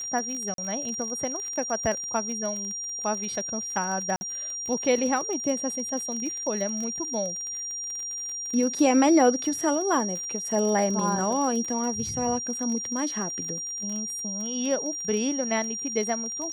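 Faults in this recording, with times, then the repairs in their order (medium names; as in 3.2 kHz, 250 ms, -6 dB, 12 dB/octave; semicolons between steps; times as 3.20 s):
crackle 36 per s -31 dBFS
whine 5.7 kHz -31 dBFS
0.54–0.58 s: dropout 42 ms
4.16–4.21 s: dropout 50 ms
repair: de-click; band-stop 5.7 kHz, Q 30; interpolate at 0.54 s, 42 ms; interpolate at 4.16 s, 50 ms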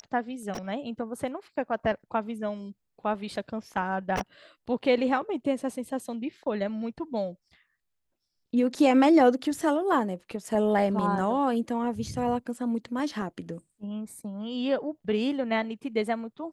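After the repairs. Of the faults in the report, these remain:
nothing left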